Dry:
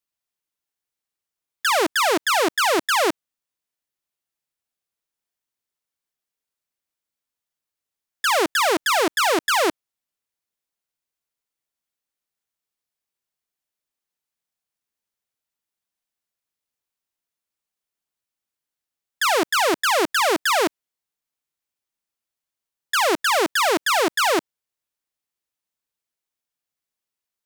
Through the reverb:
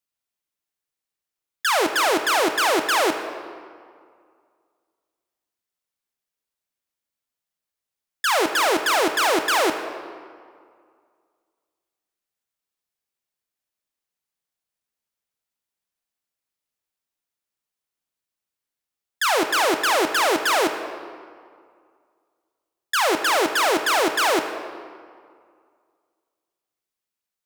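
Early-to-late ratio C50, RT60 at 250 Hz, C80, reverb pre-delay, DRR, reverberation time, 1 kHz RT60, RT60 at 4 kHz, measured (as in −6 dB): 8.0 dB, 2.1 s, 9.0 dB, 13 ms, 7.0 dB, 2.1 s, 2.1 s, 1.3 s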